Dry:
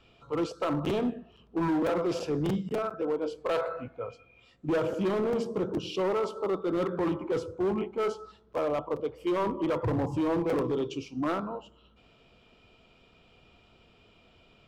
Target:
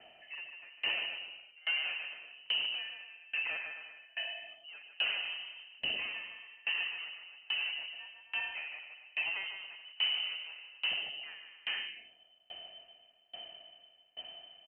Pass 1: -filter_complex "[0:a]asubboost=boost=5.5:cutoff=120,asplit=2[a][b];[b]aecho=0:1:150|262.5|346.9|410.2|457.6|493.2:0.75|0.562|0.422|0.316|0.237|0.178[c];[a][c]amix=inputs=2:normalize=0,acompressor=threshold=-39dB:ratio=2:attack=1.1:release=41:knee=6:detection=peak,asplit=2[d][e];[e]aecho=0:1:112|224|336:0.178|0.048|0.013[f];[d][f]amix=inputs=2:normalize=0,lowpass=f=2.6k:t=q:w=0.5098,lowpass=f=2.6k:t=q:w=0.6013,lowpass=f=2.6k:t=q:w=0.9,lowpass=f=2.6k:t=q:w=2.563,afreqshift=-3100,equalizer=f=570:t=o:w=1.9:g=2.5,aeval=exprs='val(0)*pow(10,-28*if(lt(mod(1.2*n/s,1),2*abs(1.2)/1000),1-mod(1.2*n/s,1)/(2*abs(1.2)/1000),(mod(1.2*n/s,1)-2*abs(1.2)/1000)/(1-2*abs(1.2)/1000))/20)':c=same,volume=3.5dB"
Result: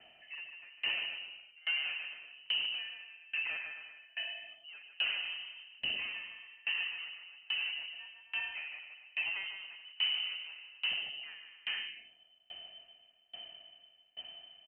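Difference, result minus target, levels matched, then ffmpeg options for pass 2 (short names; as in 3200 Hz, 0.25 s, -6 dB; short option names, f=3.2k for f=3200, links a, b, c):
500 Hz band -5.0 dB
-filter_complex "[0:a]asubboost=boost=5.5:cutoff=120,asplit=2[a][b];[b]aecho=0:1:150|262.5|346.9|410.2|457.6|493.2:0.75|0.562|0.422|0.316|0.237|0.178[c];[a][c]amix=inputs=2:normalize=0,acompressor=threshold=-39dB:ratio=2:attack=1.1:release=41:knee=6:detection=peak,asplit=2[d][e];[e]aecho=0:1:112|224|336:0.178|0.048|0.013[f];[d][f]amix=inputs=2:normalize=0,lowpass=f=2.6k:t=q:w=0.5098,lowpass=f=2.6k:t=q:w=0.6013,lowpass=f=2.6k:t=q:w=0.9,lowpass=f=2.6k:t=q:w=2.563,afreqshift=-3100,equalizer=f=570:t=o:w=1.9:g=8.5,aeval=exprs='val(0)*pow(10,-28*if(lt(mod(1.2*n/s,1),2*abs(1.2)/1000),1-mod(1.2*n/s,1)/(2*abs(1.2)/1000),(mod(1.2*n/s,1)-2*abs(1.2)/1000)/(1-2*abs(1.2)/1000))/20)':c=same,volume=3.5dB"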